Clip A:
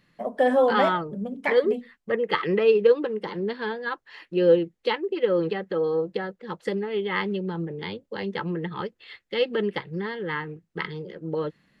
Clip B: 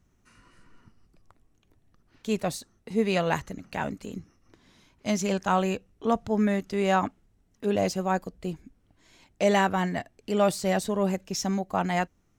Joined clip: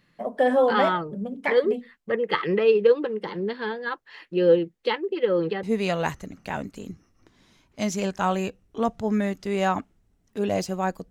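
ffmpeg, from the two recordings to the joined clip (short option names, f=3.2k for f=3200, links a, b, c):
-filter_complex "[0:a]apad=whole_dur=11.1,atrim=end=11.1,atrim=end=5.632[a];[1:a]atrim=start=2.898:end=8.37[b];[a][b]acrossfade=d=0.004:c1=hsin:c2=hsin"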